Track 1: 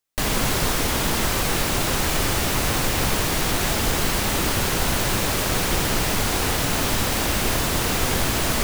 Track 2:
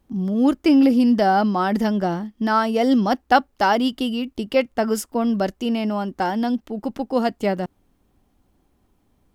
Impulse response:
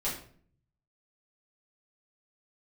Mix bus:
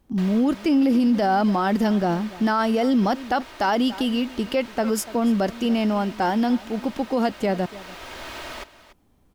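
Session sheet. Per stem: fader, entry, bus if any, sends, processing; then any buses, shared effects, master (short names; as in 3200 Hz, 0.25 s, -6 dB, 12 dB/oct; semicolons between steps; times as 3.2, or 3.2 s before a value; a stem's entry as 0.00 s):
-9.5 dB, 0.00 s, no send, echo send -15.5 dB, three-band isolator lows -13 dB, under 410 Hz, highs -15 dB, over 4700 Hz; comb 3.2 ms, depth 39%; auto duck -8 dB, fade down 0.50 s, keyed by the second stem
+1.5 dB, 0.00 s, no send, echo send -21 dB, dry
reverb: off
echo: echo 0.289 s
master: limiter -13 dBFS, peak gain reduction 10.5 dB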